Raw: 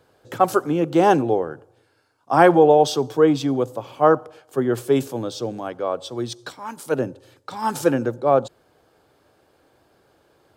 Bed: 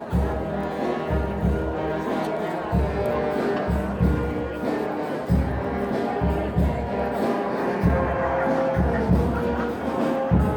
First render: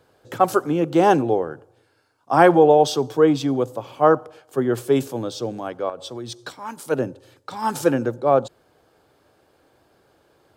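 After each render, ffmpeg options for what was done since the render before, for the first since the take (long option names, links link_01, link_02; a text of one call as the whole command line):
ffmpeg -i in.wav -filter_complex "[0:a]asettb=1/sr,asplit=3[link_01][link_02][link_03];[link_01]atrim=end=5.894[link_04];[link_02]atrim=start=5.89:end=6.36,asetpts=PTS-STARTPTS,afade=type=in:duration=0.004:curve=qsin,afade=type=out:start_time=0.466:duration=0.004:curve=qsin,acompressor=threshold=-28dB:ratio=6:attack=3.2:release=140:knee=1:detection=peak[link_05];[link_03]atrim=start=6.356[link_06];[link_04][link_05]acrossfade=duration=0.004:curve1=hsin:curve2=qsin[link_07];[link_07][link_06]acrossfade=duration=0.004:curve1=qsin:curve2=hsin" out.wav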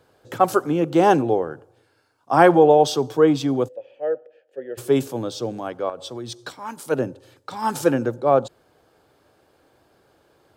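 ffmpeg -i in.wav -filter_complex "[0:a]asplit=3[link_01][link_02][link_03];[link_01]afade=type=out:start_time=3.67:duration=0.02[link_04];[link_02]asplit=3[link_05][link_06][link_07];[link_05]bandpass=frequency=530:width_type=q:width=8,volume=0dB[link_08];[link_06]bandpass=frequency=1840:width_type=q:width=8,volume=-6dB[link_09];[link_07]bandpass=frequency=2480:width_type=q:width=8,volume=-9dB[link_10];[link_08][link_09][link_10]amix=inputs=3:normalize=0,afade=type=in:start_time=3.67:duration=0.02,afade=type=out:start_time=4.77:duration=0.02[link_11];[link_03]afade=type=in:start_time=4.77:duration=0.02[link_12];[link_04][link_11][link_12]amix=inputs=3:normalize=0" out.wav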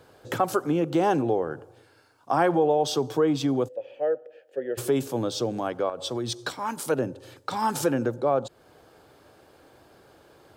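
ffmpeg -i in.wav -filter_complex "[0:a]asplit=2[link_01][link_02];[link_02]alimiter=limit=-13.5dB:level=0:latency=1:release=35,volume=-2.5dB[link_03];[link_01][link_03]amix=inputs=2:normalize=0,acompressor=threshold=-27dB:ratio=2" out.wav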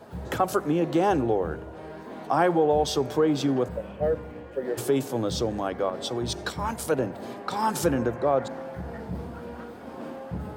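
ffmpeg -i in.wav -i bed.wav -filter_complex "[1:a]volume=-14.5dB[link_01];[0:a][link_01]amix=inputs=2:normalize=0" out.wav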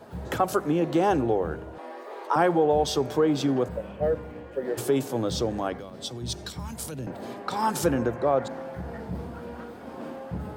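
ffmpeg -i in.wav -filter_complex "[0:a]asettb=1/sr,asplit=3[link_01][link_02][link_03];[link_01]atrim=end=1.784[link_04];[link_02]atrim=start=1.78:end=2.36,asetpts=PTS-STARTPTS,afade=type=in:duration=0.004:curve=qsin,afade=type=out:start_time=0.576:duration=0.004:curve=qsin,afreqshift=180[link_05];[link_03]atrim=start=2.356[link_06];[link_04][link_05]acrossfade=duration=0.004:curve1=hsin:curve2=qsin[link_07];[link_07][link_06]acrossfade=duration=0.004:curve1=qsin:curve2=hsin,asettb=1/sr,asplit=3[link_08][link_09][link_10];[link_08]atrim=end=5.784[link_11];[link_09]atrim=start=5.78:end=7.07,asetpts=PTS-STARTPTS,afade=type=in:duration=0.004:curve=qsin,afade=type=out:start_time=1.286:duration=0.004:curve=qsin,acrossover=split=220|3000[link_12][link_13][link_14];[link_13]acompressor=threshold=-42dB:ratio=5:attack=3.2:release=140:knee=2.83:detection=peak[link_15];[link_12][link_15][link_14]amix=inputs=3:normalize=0[link_16];[link_10]atrim=start=7.066[link_17];[link_11][link_16]acrossfade=duration=0.004:curve1=hsin:curve2=qsin[link_18];[link_18][link_17]acrossfade=duration=0.004:curve1=qsin:curve2=hsin" out.wav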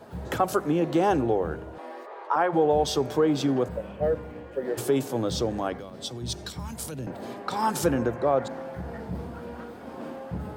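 ffmpeg -i in.wav -filter_complex "[0:a]asplit=3[link_01][link_02][link_03];[link_01]afade=type=out:start_time=2.05:duration=0.02[link_04];[link_02]bandpass=frequency=1100:width_type=q:width=0.66,afade=type=in:start_time=2.05:duration=0.02,afade=type=out:start_time=2.52:duration=0.02[link_05];[link_03]afade=type=in:start_time=2.52:duration=0.02[link_06];[link_04][link_05][link_06]amix=inputs=3:normalize=0" out.wav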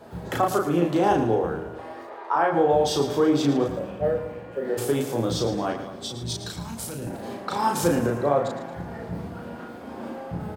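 ffmpeg -i in.wav -filter_complex "[0:a]asplit=2[link_01][link_02];[link_02]adelay=35,volume=-2.5dB[link_03];[link_01][link_03]amix=inputs=2:normalize=0,aecho=1:1:112|224|336|448|560:0.282|0.132|0.0623|0.0293|0.0138" out.wav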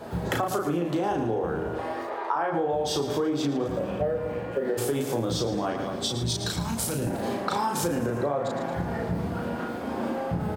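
ffmpeg -i in.wav -filter_complex "[0:a]asplit=2[link_01][link_02];[link_02]alimiter=limit=-18dB:level=0:latency=1,volume=1dB[link_03];[link_01][link_03]amix=inputs=2:normalize=0,acompressor=threshold=-24dB:ratio=6" out.wav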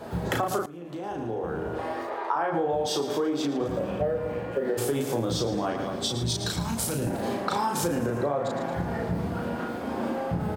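ffmpeg -i in.wav -filter_complex "[0:a]asettb=1/sr,asplit=3[link_01][link_02][link_03];[link_01]atrim=end=2.864[link_04];[link_02]atrim=start=2.86:end=3.61,asetpts=PTS-STARTPTS,afade=type=in:duration=0.004:curve=qsin,afade=type=out:start_time=0.746:duration=0.004:curve=qsin,highpass=200[link_05];[link_03]atrim=start=3.606[link_06];[link_04][link_05]acrossfade=duration=0.004:curve1=hsin:curve2=qsin[link_07];[link_07][link_06]acrossfade=duration=0.004:curve1=qsin:curve2=hsin,asplit=2[link_08][link_09];[link_08]atrim=end=0.66,asetpts=PTS-STARTPTS,afade=type=out:start_time=0.656:duration=0.004:curve=hsin:silence=0.105925[link_10];[link_09]atrim=start=0.66,asetpts=PTS-STARTPTS,afade=type=in:duration=1.18:silence=0.105925[link_11];[link_10][link_11]concat=n=2:v=0:a=1" out.wav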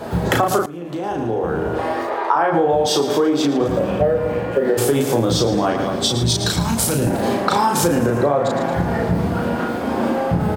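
ffmpeg -i in.wav -af "volume=10dB" out.wav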